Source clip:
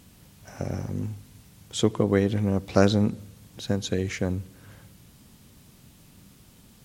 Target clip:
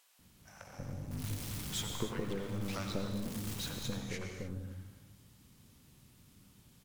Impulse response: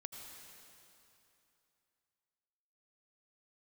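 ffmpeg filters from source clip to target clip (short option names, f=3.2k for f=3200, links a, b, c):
-filter_complex "[0:a]asettb=1/sr,asplit=3[a][b][c];[a]atrim=end=1.114[d];[b]atrim=start=1.11:end=3.83,asetpts=PTS-STARTPTS,afade=t=in:d=0.004:c=qsin,afade=t=out:st=2.716:d=0.004:c=qsin,aeval=exprs='val(0)+0.5*0.0422*sgn(val(0))':c=same[e];[c]atrim=start=3.826[f];[d][e]acrossfade=d=0.004:c1=hsin:c2=qsin[g];[g][f]acrossfade=d=0.004:c1=qsin:c2=hsin,acompressor=threshold=-26dB:ratio=2.5,aeval=exprs='0.316*(cos(1*acos(clip(val(0)/0.316,-1,1)))-cos(1*PI/2))+0.0447*(cos(8*acos(clip(val(0)/0.316,-1,1)))-cos(8*PI/2))':c=same,acrossover=split=620[h][i];[h]adelay=190[j];[j][i]amix=inputs=2:normalize=0[k];[1:a]atrim=start_sample=2205,afade=t=out:st=0.36:d=0.01,atrim=end_sample=16317[l];[k][l]afir=irnorm=-1:irlink=0,volume=-4.5dB"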